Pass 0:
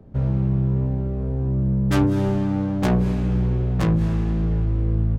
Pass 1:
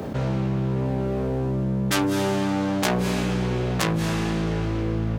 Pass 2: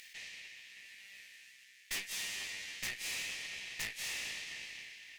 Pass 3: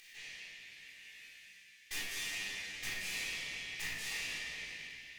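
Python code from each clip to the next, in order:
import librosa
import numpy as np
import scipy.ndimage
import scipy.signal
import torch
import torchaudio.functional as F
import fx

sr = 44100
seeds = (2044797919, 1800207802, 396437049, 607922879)

y1 = fx.highpass(x, sr, hz=520.0, slope=6)
y1 = fx.high_shelf(y1, sr, hz=2500.0, db=10.5)
y1 = fx.env_flatten(y1, sr, amount_pct=70)
y2 = scipy.signal.sosfilt(scipy.signal.cheby1(6, 3, 1800.0, 'highpass', fs=sr, output='sos'), y1)
y2 = fx.tube_stage(y2, sr, drive_db=36.0, bias=0.55)
y2 = y2 * 10.0 ** (1.5 / 20.0)
y3 = fx.room_shoebox(y2, sr, seeds[0], volume_m3=1100.0, walls='mixed', distance_m=3.8)
y3 = y3 * 10.0 ** (-7.0 / 20.0)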